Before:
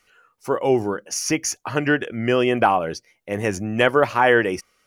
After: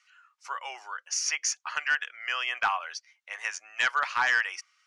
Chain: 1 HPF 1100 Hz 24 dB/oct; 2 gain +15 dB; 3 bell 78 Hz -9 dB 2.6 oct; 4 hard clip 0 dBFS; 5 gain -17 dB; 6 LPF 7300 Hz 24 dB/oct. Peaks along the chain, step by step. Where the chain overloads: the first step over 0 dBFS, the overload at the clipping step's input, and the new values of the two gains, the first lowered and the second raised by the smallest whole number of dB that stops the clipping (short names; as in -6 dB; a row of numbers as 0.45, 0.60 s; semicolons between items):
-6.5, +8.5, +8.5, 0.0, -17.0, -15.5 dBFS; step 2, 8.5 dB; step 2 +6 dB, step 5 -8 dB